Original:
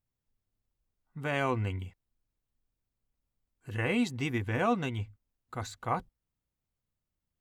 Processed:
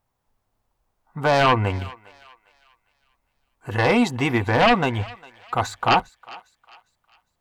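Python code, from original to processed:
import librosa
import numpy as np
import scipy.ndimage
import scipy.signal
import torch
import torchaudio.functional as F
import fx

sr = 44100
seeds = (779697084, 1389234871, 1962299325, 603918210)

y = fx.peak_eq(x, sr, hz=870.0, db=14.5, octaves=1.6)
y = fx.fold_sine(y, sr, drive_db=11, ceiling_db=-5.0)
y = fx.echo_thinned(y, sr, ms=404, feedback_pct=40, hz=900.0, wet_db=-19)
y = y * librosa.db_to_amplitude(-6.5)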